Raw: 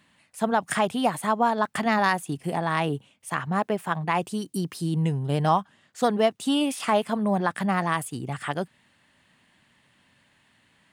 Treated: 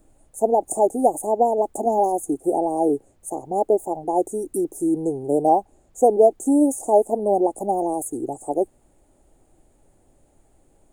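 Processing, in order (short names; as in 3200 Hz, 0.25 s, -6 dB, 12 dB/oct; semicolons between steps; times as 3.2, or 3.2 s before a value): Chebyshev band-stop 820–6600 Hz, order 5; resonant low shelf 240 Hz -11.5 dB, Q 3; added noise brown -64 dBFS; gain +6 dB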